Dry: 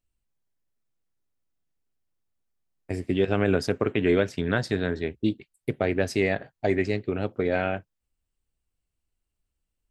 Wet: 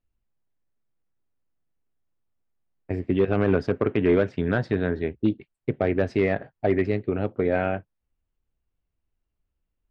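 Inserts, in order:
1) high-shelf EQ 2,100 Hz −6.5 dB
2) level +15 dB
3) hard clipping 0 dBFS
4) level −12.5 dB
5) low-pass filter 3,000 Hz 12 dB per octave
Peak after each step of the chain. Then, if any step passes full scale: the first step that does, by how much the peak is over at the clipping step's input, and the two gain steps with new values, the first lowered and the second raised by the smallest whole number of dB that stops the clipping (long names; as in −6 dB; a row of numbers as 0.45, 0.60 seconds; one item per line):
−10.5, +4.5, 0.0, −12.5, −12.0 dBFS
step 2, 4.5 dB
step 2 +10 dB, step 4 −7.5 dB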